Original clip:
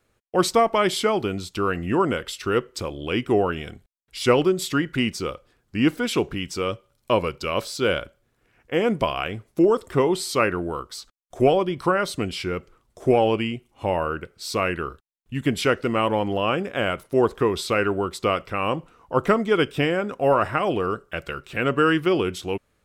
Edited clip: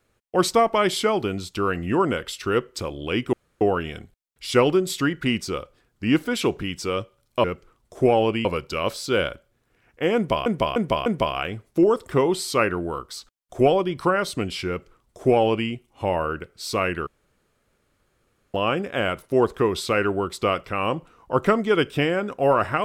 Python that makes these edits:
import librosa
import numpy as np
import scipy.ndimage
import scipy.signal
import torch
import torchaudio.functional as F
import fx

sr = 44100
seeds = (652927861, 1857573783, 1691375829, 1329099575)

y = fx.edit(x, sr, fx.insert_room_tone(at_s=3.33, length_s=0.28),
    fx.repeat(start_s=8.87, length_s=0.3, count=4),
    fx.duplicate(start_s=12.49, length_s=1.01, to_s=7.16),
    fx.room_tone_fill(start_s=14.88, length_s=1.47), tone=tone)